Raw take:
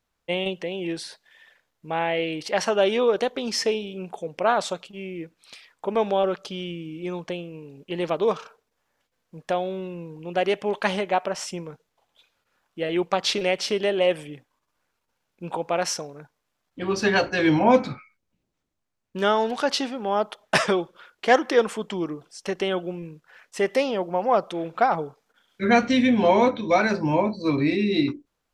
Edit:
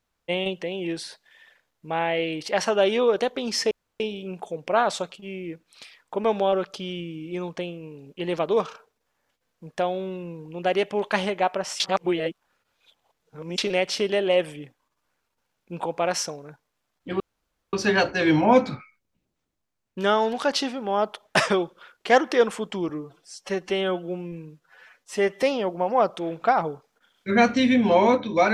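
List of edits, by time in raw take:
3.71 insert room tone 0.29 s
11.51–13.29 reverse
16.91 insert room tone 0.53 s
22.07–23.76 stretch 1.5×

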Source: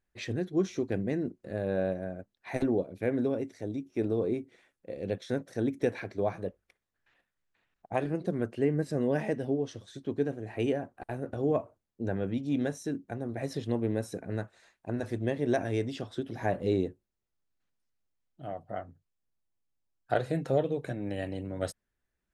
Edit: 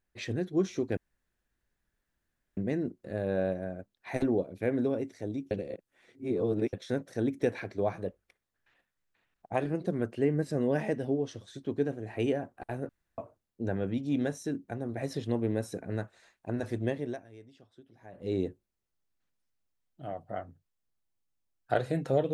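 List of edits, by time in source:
0.97 insert room tone 1.60 s
3.91–5.13 reverse
11.29–11.58 room tone
15.27–16.86 dip -21 dB, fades 0.34 s

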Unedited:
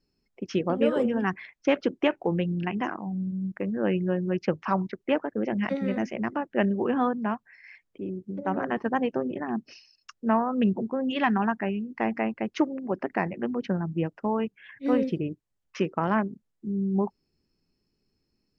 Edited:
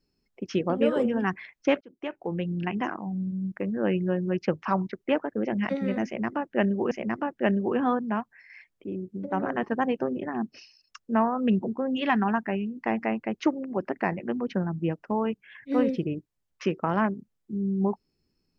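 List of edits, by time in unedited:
1.81–2.67 fade in
6.05–6.91 loop, 2 plays

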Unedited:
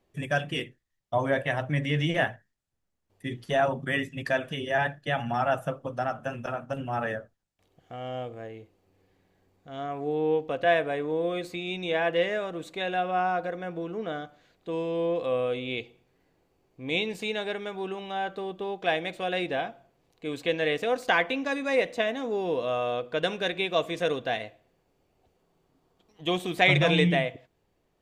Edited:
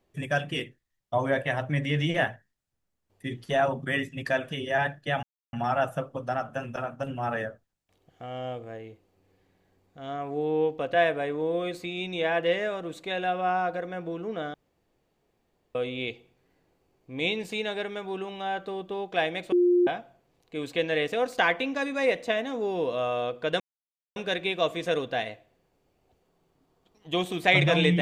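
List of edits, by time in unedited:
5.23 insert silence 0.30 s
14.24–15.45 room tone
19.22–19.57 bleep 354 Hz -17.5 dBFS
23.3 insert silence 0.56 s

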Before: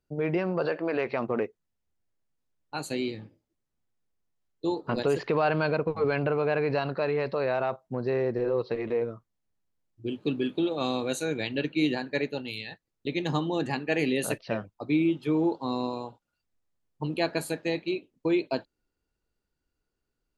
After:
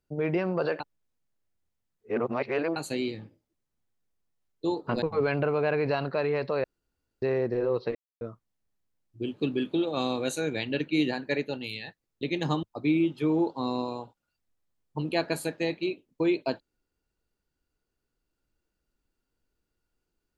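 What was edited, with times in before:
0.8–2.76 reverse
5.02–5.86 cut
7.48–8.06 room tone
8.79–9.05 mute
13.47–14.68 cut

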